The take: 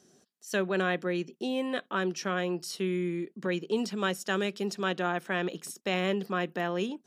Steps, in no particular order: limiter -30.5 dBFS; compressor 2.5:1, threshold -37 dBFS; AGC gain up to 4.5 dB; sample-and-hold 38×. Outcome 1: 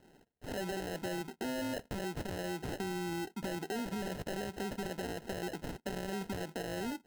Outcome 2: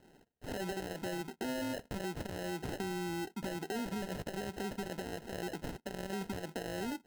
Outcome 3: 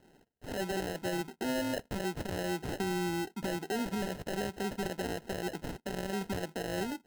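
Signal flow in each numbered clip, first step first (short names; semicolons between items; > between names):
sample-and-hold > limiter > AGC > compressor; limiter > AGC > compressor > sample-and-hold; sample-and-hold > compressor > limiter > AGC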